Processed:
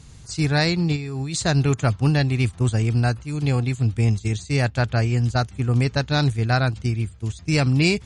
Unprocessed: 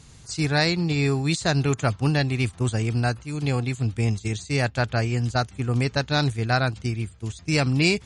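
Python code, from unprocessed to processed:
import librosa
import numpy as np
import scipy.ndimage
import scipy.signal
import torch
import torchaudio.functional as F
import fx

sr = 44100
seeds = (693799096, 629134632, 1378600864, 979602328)

y = fx.low_shelf(x, sr, hz=170.0, db=6.5)
y = fx.over_compress(y, sr, threshold_db=-27.0, ratio=-1.0, at=(0.95, 1.41), fade=0.02)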